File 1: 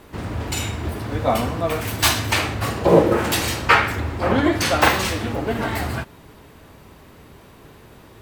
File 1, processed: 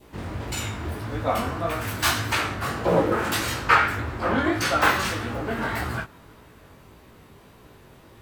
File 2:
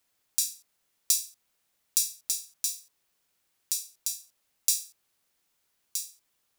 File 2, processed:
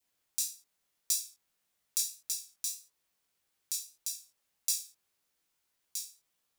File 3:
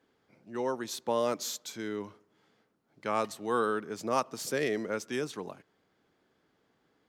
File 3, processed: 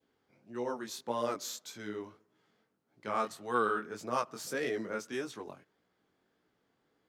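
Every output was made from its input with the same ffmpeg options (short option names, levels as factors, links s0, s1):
-filter_complex "[0:a]adynamicequalizer=threshold=0.0112:dfrequency=1400:dqfactor=2:tfrequency=1400:tqfactor=2:attack=5:release=100:ratio=0.375:range=3.5:mode=boostabove:tftype=bell,asplit=2[s0][s1];[s1]asoftclip=type=tanh:threshold=0.141,volume=0.501[s2];[s0][s2]amix=inputs=2:normalize=0,flanger=delay=16:depth=6.8:speed=1.7,volume=0.562"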